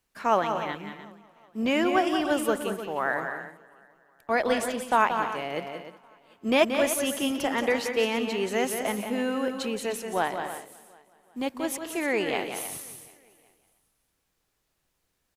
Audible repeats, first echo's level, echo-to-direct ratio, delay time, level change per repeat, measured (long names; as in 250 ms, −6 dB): 6, −7.5 dB, −5.5 dB, 179 ms, repeats not evenly spaced